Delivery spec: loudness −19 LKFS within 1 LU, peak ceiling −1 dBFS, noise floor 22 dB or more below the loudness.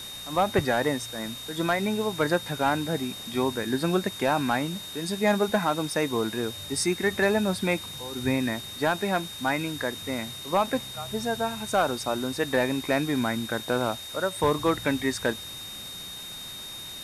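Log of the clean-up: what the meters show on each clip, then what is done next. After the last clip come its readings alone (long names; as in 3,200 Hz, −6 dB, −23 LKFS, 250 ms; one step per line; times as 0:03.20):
interfering tone 3,700 Hz; level of the tone −38 dBFS; background noise floor −39 dBFS; target noise floor −50 dBFS; integrated loudness −27.5 LKFS; sample peak −13.0 dBFS; target loudness −19.0 LKFS
→ notch filter 3,700 Hz, Q 30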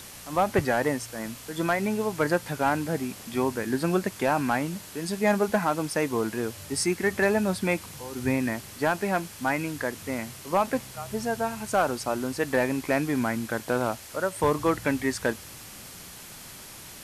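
interfering tone none found; background noise floor −44 dBFS; target noise floor −50 dBFS
→ broadband denoise 6 dB, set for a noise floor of −44 dBFS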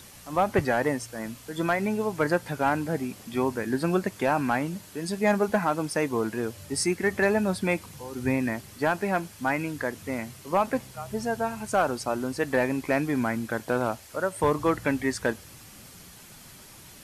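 background noise floor −49 dBFS; target noise floor −50 dBFS
→ broadband denoise 6 dB, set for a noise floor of −49 dBFS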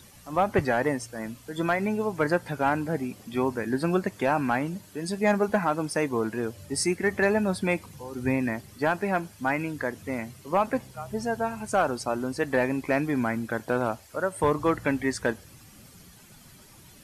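background noise floor −52 dBFS; integrated loudness −27.5 LKFS; sample peak −13.0 dBFS; target loudness −19.0 LKFS
→ level +8.5 dB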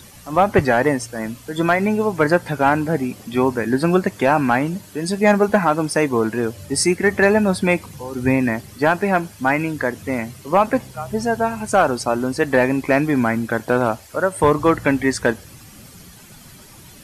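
integrated loudness −19.0 LKFS; sample peak −4.5 dBFS; background noise floor −43 dBFS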